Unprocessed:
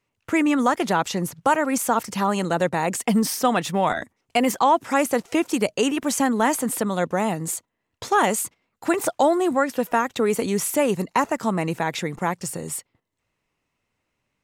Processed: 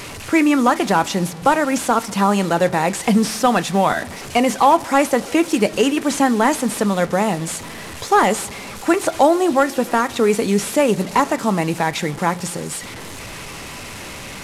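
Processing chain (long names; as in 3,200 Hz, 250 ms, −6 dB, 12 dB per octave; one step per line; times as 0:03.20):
linear delta modulator 64 kbit/s, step −31.5 dBFS
feedback echo with a low-pass in the loop 68 ms, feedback 85%, low-pass 2,000 Hz, level −23.5 dB
on a send at −10.5 dB: convolution reverb, pre-delay 3 ms
on the sum: level +4.5 dB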